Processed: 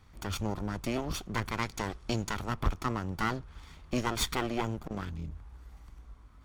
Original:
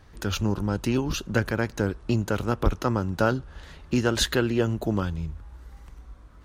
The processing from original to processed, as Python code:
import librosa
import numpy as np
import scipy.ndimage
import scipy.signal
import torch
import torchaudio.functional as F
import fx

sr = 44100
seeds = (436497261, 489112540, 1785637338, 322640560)

y = fx.lower_of_two(x, sr, delay_ms=0.88)
y = fx.peak_eq(y, sr, hz=5600.0, db=7.0, octaves=2.3, at=(1.52, 2.34))
y = fx.transformer_sat(y, sr, knee_hz=330.0, at=(4.81, 5.33))
y = y * librosa.db_to_amplitude(-5.0)